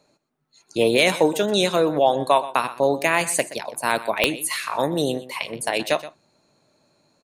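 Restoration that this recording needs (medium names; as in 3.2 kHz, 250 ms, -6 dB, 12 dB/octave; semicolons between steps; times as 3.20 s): de-click; inverse comb 124 ms -16 dB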